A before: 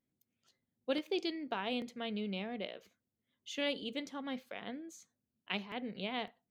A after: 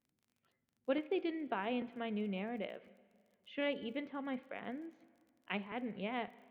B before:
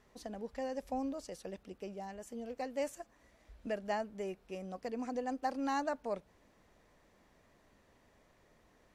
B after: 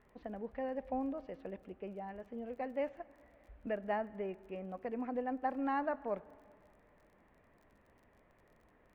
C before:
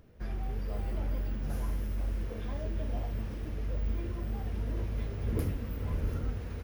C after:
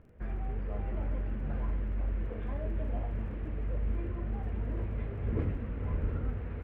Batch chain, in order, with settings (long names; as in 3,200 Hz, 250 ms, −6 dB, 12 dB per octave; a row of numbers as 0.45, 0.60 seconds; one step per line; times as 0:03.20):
low-pass filter 2,500 Hz 24 dB per octave
dense smooth reverb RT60 2.2 s, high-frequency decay 0.75×, DRR 18 dB
surface crackle 30 per second −58 dBFS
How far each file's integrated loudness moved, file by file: −1.0, 0.0, 0.0 LU